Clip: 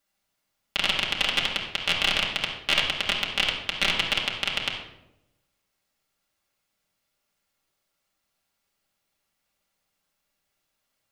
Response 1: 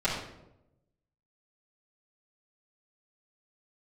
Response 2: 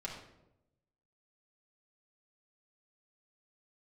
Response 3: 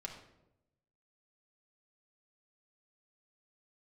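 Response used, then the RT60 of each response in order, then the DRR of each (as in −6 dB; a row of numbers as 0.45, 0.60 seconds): 2; 0.90, 0.90, 0.90 seconds; −12.5, −4.5, −0.5 decibels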